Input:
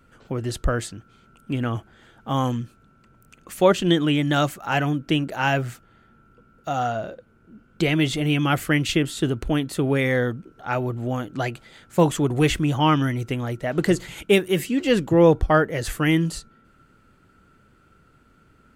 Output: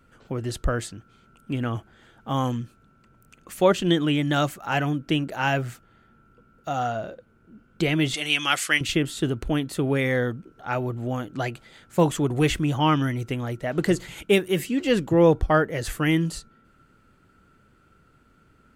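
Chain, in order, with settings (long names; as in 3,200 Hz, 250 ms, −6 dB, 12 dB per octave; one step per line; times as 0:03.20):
0:08.14–0:08.81: meter weighting curve ITU-R 468
level −2 dB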